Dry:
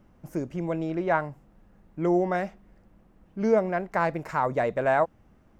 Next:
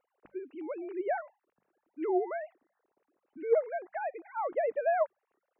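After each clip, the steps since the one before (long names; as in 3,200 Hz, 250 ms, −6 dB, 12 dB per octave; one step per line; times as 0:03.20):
three sine waves on the formant tracks
mains-hum notches 50/100/150/200 Hz
level −6.5 dB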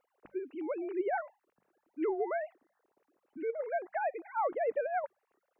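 compressor whose output falls as the input rises −30 dBFS, ratio −0.5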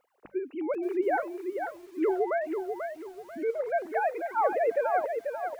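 feedback echo at a low word length 489 ms, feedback 35%, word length 10 bits, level −6 dB
level +5.5 dB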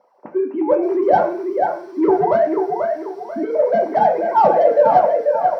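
mid-hump overdrive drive 15 dB, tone 1,800 Hz, clips at −14.5 dBFS
convolution reverb RT60 0.40 s, pre-delay 3 ms, DRR 1 dB
level −4 dB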